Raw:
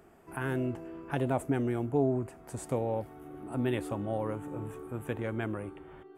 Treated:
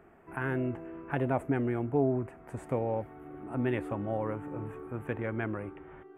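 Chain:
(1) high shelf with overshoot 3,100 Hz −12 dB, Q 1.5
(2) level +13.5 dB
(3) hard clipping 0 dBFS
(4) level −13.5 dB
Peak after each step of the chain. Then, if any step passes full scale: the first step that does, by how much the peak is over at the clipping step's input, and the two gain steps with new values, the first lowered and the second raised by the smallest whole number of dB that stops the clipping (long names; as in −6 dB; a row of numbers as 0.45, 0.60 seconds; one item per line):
−15.5, −2.0, −2.0, −15.5 dBFS
no step passes full scale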